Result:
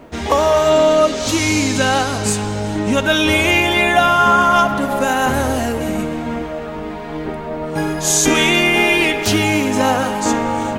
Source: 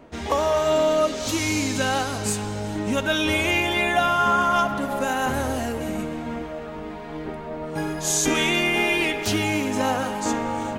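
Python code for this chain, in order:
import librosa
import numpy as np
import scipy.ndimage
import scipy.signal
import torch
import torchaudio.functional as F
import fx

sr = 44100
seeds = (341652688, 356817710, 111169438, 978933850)

y = fx.peak_eq(x, sr, hz=14000.0, db=-6.5, octaves=0.56, at=(0.69, 3.04))
y = fx.quant_dither(y, sr, seeds[0], bits=12, dither='none')
y = y * librosa.db_to_amplitude(7.5)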